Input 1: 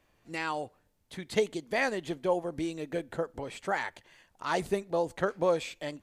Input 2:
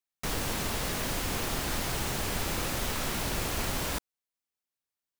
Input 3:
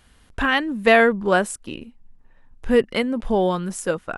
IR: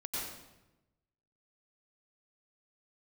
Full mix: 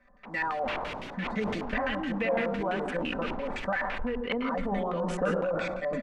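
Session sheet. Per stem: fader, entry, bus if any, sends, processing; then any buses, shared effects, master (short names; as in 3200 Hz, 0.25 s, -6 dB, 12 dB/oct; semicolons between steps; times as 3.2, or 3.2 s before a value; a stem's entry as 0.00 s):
+2.0 dB, 0.00 s, bus A, send -23.5 dB, fixed phaser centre 580 Hz, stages 8; comb 5.1 ms, depth 95%
-7.0 dB, 0.00 s, no bus, send -8 dB, low shelf 320 Hz -9 dB; photocell phaser 1.9 Hz; auto duck -10 dB, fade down 0.30 s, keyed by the first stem
-3.0 dB, 1.35 s, bus A, send -10.5 dB, compressor 5:1, threshold -27 dBFS, peak gain reduction 16 dB
bus A: 0.0 dB, comb 4 ms, depth 86%; compressor 6:1, threshold -31 dBFS, peak gain reduction 15.5 dB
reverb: on, RT60 1.0 s, pre-delay 86 ms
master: LFO low-pass square 5.9 Hz 920–2600 Hz; sustainer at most 25 dB/s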